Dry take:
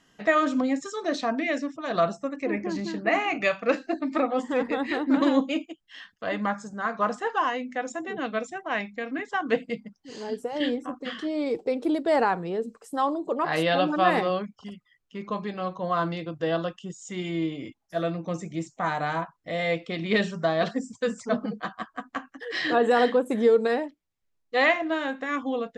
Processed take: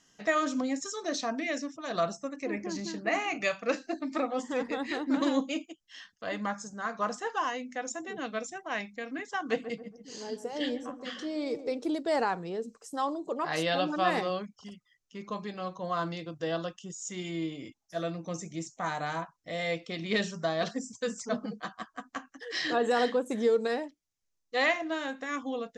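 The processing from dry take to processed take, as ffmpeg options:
-filter_complex "[0:a]asettb=1/sr,asplit=3[a][b][c];[a]atrim=end=9.364[d];[b]atrim=start=9.36:end=11.79,asetpts=PTS-STARTPTS,afade=t=in:d=0.004:c=qsin,afade=t=out:st=2.426:d=0.004:c=qsin,asplit=2[e][f];[f]adelay=138,lowpass=f=810:p=1,volume=-9.5dB,asplit=2[g][h];[h]adelay=138,lowpass=f=810:p=1,volume=0.47,asplit=2[i][j];[j]adelay=138,lowpass=f=810:p=1,volume=0.47,asplit=2[k][l];[l]adelay=138,lowpass=f=810:p=1,volume=0.47,asplit=2[m][n];[n]adelay=138,lowpass=f=810:p=1,volume=0.47[o];[e][g][i][k][m][o]amix=inputs=6:normalize=0,atrim=end_sample=107163[p];[c]atrim=start=11.786[q];[d][p]acrossfade=d=0.004:c1=hsin:c2=qsin[r];[r][q]acrossfade=d=0.004:c1=qsin:c2=hsin,equalizer=f=6.1k:t=o:w=0.91:g=12.5,volume=-6dB"

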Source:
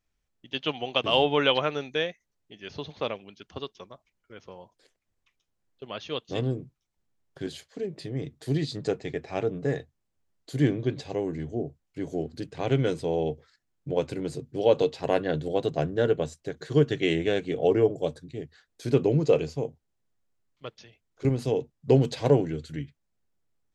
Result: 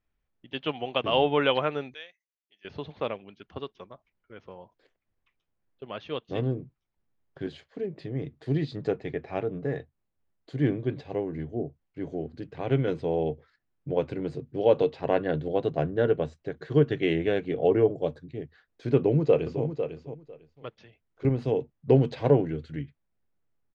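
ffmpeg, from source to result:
-filter_complex "[0:a]asettb=1/sr,asplit=3[a][b][c];[a]atrim=end=1.944[d];[b]atrim=start=1.94:end=2.65,asetpts=PTS-STARTPTS,afade=t=in:d=0.004:c=qsin,afade=t=out:st=0.706:d=0.004:c=qsin,aderivative[e];[c]atrim=start=2.646[f];[d][e]acrossfade=d=0.004:c1=hsin:c2=qsin[g];[g][f]acrossfade=d=0.004:c1=qsin:c2=hsin,asettb=1/sr,asplit=3[h][i][j];[h]atrim=end=9.354[k];[i]atrim=start=9.35:end=12.88,asetpts=PTS-STARTPTS,afade=t=in:d=0.004:c=qsin,afade=t=out:st=3.526:d=0.004:c=qsin,tremolo=f=4.4:d=0.3[l];[j]atrim=start=12.876[m];[k][l]acrossfade=d=0.004:c1=hsin:c2=qsin[n];[n][m]acrossfade=d=0.004:c1=qsin:c2=hsin,asplit=2[o][p];[p]afade=t=in:st=18.96:d=0.01,afade=t=out:st=19.64:d=0.01,aecho=0:1:500|1000:0.354813|0.053222[q];[o][q]amix=inputs=2:normalize=0,lowpass=2.6k"

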